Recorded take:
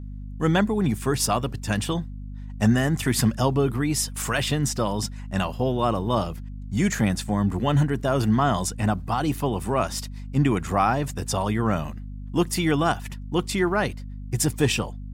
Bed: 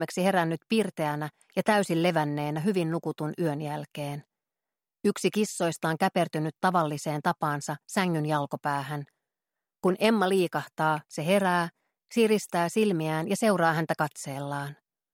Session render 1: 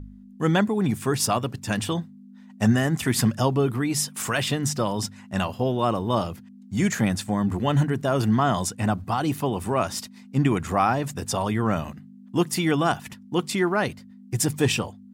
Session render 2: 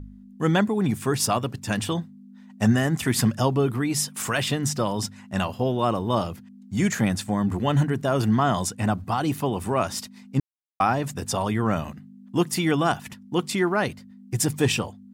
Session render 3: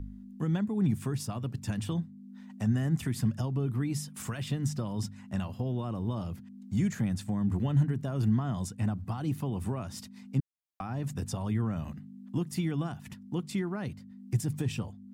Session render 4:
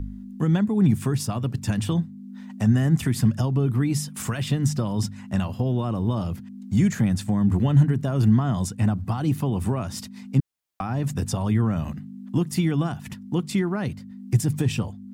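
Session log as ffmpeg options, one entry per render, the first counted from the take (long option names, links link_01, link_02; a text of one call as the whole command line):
ffmpeg -i in.wav -af "bandreject=frequency=50:width_type=h:width=4,bandreject=frequency=100:width_type=h:width=4,bandreject=frequency=150:width_type=h:width=4" out.wav
ffmpeg -i in.wav -filter_complex "[0:a]asplit=3[link_01][link_02][link_03];[link_01]atrim=end=10.4,asetpts=PTS-STARTPTS,afade=type=out:start_time=10.396:duration=0.004:curve=hsin[link_04];[link_02]atrim=start=10.4:end=10.8,asetpts=PTS-STARTPTS,volume=0[link_05];[link_03]atrim=start=10.8,asetpts=PTS-STARTPTS,afade=type=in:duration=0.004:curve=hsin[link_06];[link_04][link_05][link_06]concat=n=3:v=0:a=1" out.wav
ffmpeg -i in.wav -filter_complex "[0:a]alimiter=limit=-15.5dB:level=0:latency=1:release=212,acrossover=split=230[link_01][link_02];[link_02]acompressor=threshold=-50dB:ratio=2[link_03];[link_01][link_03]amix=inputs=2:normalize=0" out.wav
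ffmpeg -i in.wav -af "volume=8.5dB" out.wav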